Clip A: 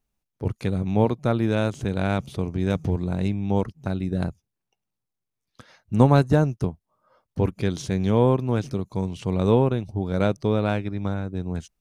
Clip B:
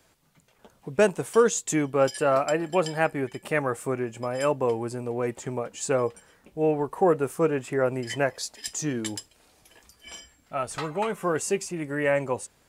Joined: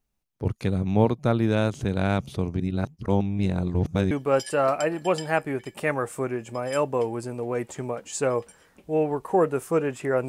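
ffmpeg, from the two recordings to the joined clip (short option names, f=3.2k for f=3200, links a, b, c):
-filter_complex "[0:a]apad=whole_dur=10.28,atrim=end=10.28,asplit=2[a][b];[a]atrim=end=2.602[c];[b]atrim=start=2.598:end=4.112,asetpts=PTS-STARTPTS,areverse[d];[1:a]atrim=start=1.788:end=7.96[e];[c][d]acrossfade=d=0.004:c1=hsin:c2=hsin[f];[f][e]acrossfade=d=0.004:c1=hsin:c2=hsin"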